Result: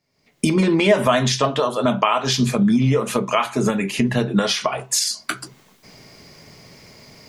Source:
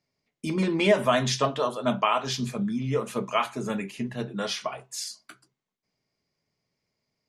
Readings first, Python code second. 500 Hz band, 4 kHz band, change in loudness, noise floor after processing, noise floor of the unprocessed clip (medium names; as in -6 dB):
+6.5 dB, +8.5 dB, +8.0 dB, -60 dBFS, under -85 dBFS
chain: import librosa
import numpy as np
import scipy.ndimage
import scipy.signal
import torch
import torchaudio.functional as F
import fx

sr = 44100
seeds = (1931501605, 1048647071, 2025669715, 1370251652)

y = fx.recorder_agc(x, sr, target_db=-15.0, rise_db_per_s=49.0, max_gain_db=30)
y = y * librosa.db_to_amplitude(5.0)